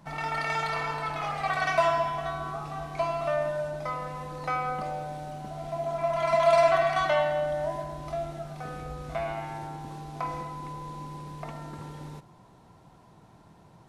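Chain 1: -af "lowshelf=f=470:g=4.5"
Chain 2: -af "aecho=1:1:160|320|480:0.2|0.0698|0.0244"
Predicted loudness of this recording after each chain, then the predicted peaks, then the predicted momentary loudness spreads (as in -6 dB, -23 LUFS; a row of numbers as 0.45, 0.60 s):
-28.5, -29.5 LUFS; -9.5, -10.5 dBFS; 14, 15 LU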